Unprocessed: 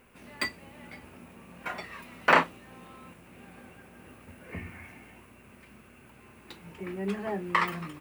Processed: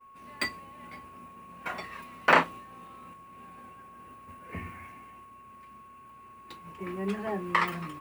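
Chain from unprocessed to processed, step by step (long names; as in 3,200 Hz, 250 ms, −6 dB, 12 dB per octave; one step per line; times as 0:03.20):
steady tone 1,100 Hz −43 dBFS
downward expander −40 dBFS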